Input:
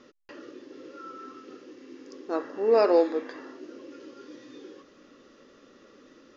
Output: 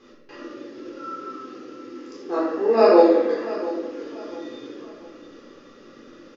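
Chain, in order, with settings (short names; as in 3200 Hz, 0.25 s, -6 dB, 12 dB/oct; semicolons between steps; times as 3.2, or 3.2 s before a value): feedback echo 0.687 s, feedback 35%, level -15 dB; shoebox room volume 520 m³, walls mixed, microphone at 3.9 m; gain -3 dB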